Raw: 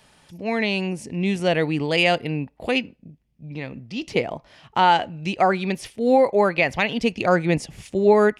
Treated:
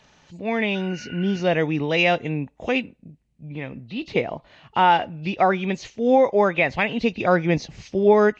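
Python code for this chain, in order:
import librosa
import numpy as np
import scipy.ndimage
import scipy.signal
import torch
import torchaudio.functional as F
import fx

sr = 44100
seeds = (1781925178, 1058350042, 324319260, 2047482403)

y = fx.freq_compress(x, sr, knee_hz=2600.0, ratio=1.5)
y = fx.spec_repair(y, sr, seeds[0], start_s=0.77, length_s=0.62, low_hz=1400.0, high_hz=3000.0, source='after')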